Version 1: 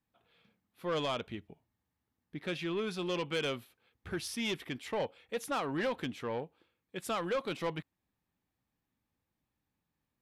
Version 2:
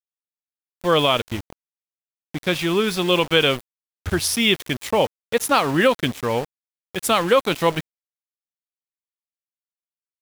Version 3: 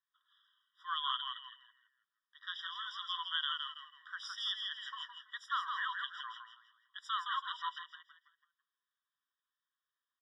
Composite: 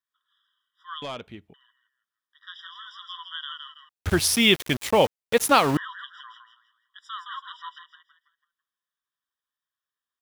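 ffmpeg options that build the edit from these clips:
-filter_complex "[2:a]asplit=3[s0][s1][s2];[s0]atrim=end=1.022[s3];[0:a]atrim=start=1.018:end=1.542[s4];[s1]atrim=start=1.538:end=3.892[s5];[1:a]atrim=start=3.888:end=5.772[s6];[s2]atrim=start=5.768[s7];[s3][s4]acrossfade=d=0.004:c1=hsin:c2=hsin[s8];[s8][s5]acrossfade=d=0.004:c1=hsin:c2=hsin[s9];[s9][s6]acrossfade=d=0.004:c1=hsin:c2=hsin[s10];[s10][s7]acrossfade=d=0.004:c1=hsin:c2=hsin"

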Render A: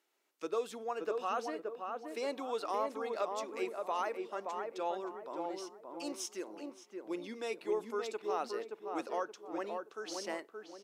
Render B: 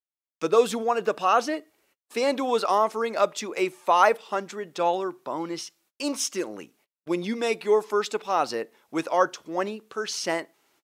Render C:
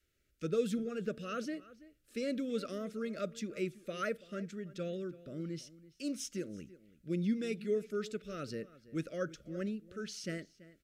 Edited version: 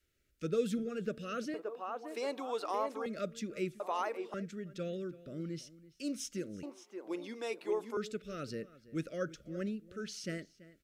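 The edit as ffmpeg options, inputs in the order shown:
-filter_complex "[0:a]asplit=3[s0][s1][s2];[2:a]asplit=4[s3][s4][s5][s6];[s3]atrim=end=1.542[s7];[s0]atrim=start=1.538:end=3.062[s8];[s4]atrim=start=3.058:end=3.802[s9];[s1]atrim=start=3.798:end=4.342[s10];[s5]atrim=start=4.338:end=6.632[s11];[s2]atrim=start=6.628:end=7.972[s12];[s6]atrim=start=7.968[s13];[s7][s8]acrossfade=d=0.004:c1=hsin:c2=hsin[s14];[s14][s9]acrossfade=d=0.004:c1=hsin:c2=hsin[s15];[s15][s10]acrossfade=d=0.004:c1=hsin:c2=hsin[s16];[s16][s11]acrossfade=d=0.004:c1=hsin:c2=hsin[s17];[s17][s12]acrossfade=d=0.004:c1=hsin:c2=hsin[s18];[s18][s13]acrossfade=d=0.004:c1=hsin:c2=hsin"

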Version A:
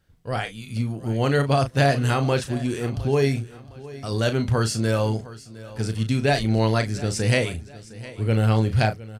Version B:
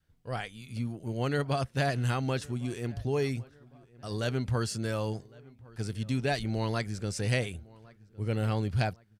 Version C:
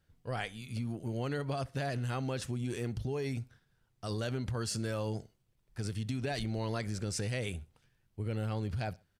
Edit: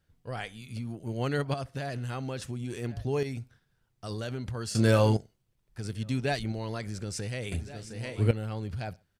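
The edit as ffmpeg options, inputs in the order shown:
-filter_complex "[1:a]asplit=3[s0][s1][s2];[0:a]asplit=2[s3][s4];[2:a]asplit=6[s5][s6][s7][s8][s9][s10];[s5]atrim=end=0.952[s11];[s0]atrim=start=0.948:end=1.542[s12];[s6]atrim=start=1.538:end=2.812[s13];[s1]atrim=start=2.808:end=3.232[s14];[s7]atrim=start=3.228:end=4.752[s15];[s3]atrim=start=4.748:end=5.172[s16];[s8]atrim=start=5.168:end=5.872[s17];[s2]atrim=start=5.868:end=6.522[s18];[s9]atrim=start=6.518:end=7.522[s19];[s4]atrim=start=7.518:end=8.312[s20];[s10]atrim=start=8.308[s21];[s11][s12]acrossfade=d=0.004:c1=hsin:c2=hsin[s22];[s22][s13]acrossfade=d=0.004:c1=hsin:c2=hsin[s23];[s23][s14]acrossfade=d=0.004:c1=hsin:c2=hsin[s24];[s24][s15]acrossfade=d=0.004:c1=hsin:c2=hsin[s25];[s25][s16]acrossfade=d=0.004:c1=hsin:c2=hsin[s26];[s26][s17]acrossfade=d=0.004:c1=hsin:c2=hsin[s27];[s27][s18]acrossfade=d=0.004:c1=hsin:c2=hsin[s28];[s28][s19]acrossfade=d=0.004:c1=hsin:c2=hsin[s29];[s29][s20]acrossfade=d=0.004:c1=hsin:c2=hsin[s30];[s30][s21]acrossfade=d=0.004:c1=hsin:c2=hsin"

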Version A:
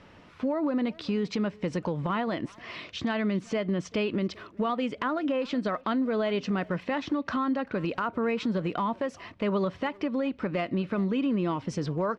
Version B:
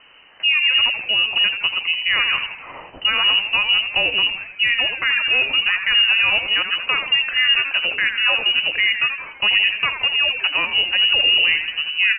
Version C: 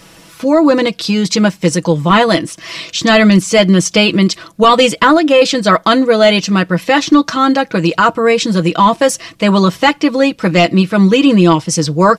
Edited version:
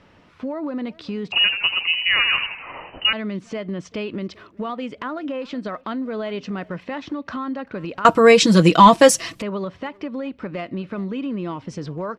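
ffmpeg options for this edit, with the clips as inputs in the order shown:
-filter_complex "[0:a]asplit=3[s0][s1][s2];[s0]atrim=end=1.322[s3];[1:a]atrim=start=1.318:end=3.132[s4];[s1]atrim=start=3.128:end=8.052[s5];[2:a]atrim=start=8.048:end=9.422[s6];[s2]atrim=start=9.418[s7];[s3][s4]acrossfade=d=0.004:c1=hsin:c2=hsin[s8];[s8][s5]acrossfade=d=0.004:c1=hsin:c2=hsin[s9];[s9][s6]acrossfade=d=0.004:c1=hsin:c2=hsin[s10];[s10][s7]acrossfade=d=0.004:c1=hsin:c2=hsin"

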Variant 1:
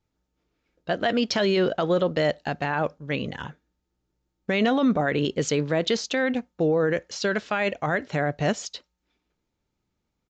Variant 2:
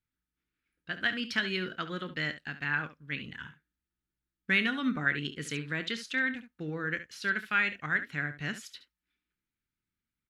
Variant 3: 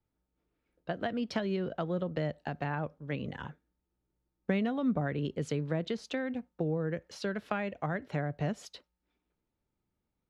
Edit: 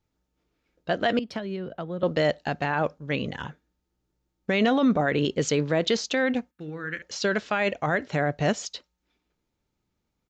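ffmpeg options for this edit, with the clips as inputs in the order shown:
-filter_complex "[0:a]asplit=3[s0][s1][s2];[s0]atrim=end=1.192[s3];[2:a]atrim=start=1.188:end=2.032[s4];[s1]atrim=start=2.028:end=6.512[s5];[1:a]atrim=start=6.508:end=7.022[s6];[s2]atrim=start=7.018[s7];[s3][s4]acrossfade=d=0.004:c1=hsin:c2=hsin[s8];[s8][s5]acrossfade=d=0.004:c1=hsin:c2=hsin[s9];[s9][s6]acrossfade=d=0.004:c1=hsin:c2=hsin[s10];[s10][s7]acrossfade=d=0.004:c1=hsin:c2=hsin"

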